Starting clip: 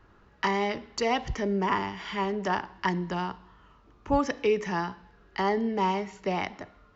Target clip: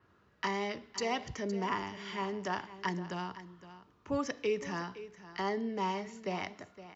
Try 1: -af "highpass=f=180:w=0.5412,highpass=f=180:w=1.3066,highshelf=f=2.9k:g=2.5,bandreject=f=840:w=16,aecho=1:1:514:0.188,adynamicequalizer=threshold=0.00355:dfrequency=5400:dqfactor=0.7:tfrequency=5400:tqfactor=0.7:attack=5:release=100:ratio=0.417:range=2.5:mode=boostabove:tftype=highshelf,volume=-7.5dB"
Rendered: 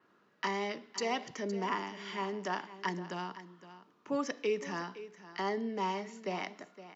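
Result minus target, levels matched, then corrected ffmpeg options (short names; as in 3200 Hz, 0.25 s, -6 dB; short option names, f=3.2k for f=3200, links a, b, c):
125 Hz band -2.5 dB
-af "highpass=f=73:w=0.5412,highpass=f=73:w=1.3066,highshelf=f=2.9k:g=2.5,bandreject=f=840:w=16,aecho=1:1:514:0.188,adynamicequalizer=threshold=0.00355:dfrequency=5400:dqfactor=0.7:tfrequency=5400:tqfactor=0.7:attack=5:release=100:ratio=0.417:range=2.5:mode=boostabove:tftype=highshelf,volume=-7.5dB"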